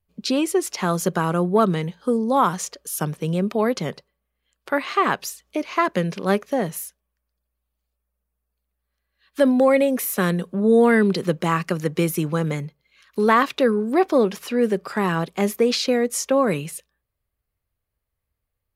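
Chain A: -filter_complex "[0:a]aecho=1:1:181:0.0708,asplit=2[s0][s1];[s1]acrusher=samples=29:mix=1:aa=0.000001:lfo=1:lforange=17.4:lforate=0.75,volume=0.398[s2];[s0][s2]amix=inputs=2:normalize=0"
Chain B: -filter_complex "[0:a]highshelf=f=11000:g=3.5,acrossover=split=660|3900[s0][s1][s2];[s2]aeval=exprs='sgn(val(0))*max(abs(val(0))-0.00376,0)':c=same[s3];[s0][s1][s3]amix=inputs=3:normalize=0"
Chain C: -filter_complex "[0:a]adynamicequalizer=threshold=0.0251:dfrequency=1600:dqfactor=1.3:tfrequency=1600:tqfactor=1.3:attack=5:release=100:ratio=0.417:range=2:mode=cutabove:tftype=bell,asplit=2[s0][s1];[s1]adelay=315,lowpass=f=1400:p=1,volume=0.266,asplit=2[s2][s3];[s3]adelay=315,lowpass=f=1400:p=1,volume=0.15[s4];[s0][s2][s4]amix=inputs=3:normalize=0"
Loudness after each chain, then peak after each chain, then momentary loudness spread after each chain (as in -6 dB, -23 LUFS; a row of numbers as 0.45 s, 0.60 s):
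-19.5 LUFS, -21.5 LUFS, -21.5 LUFS; -2.5 dBFS, -3.0 dBFS, -5.0 dBFS; 11 LU, 11 LU, 11 LU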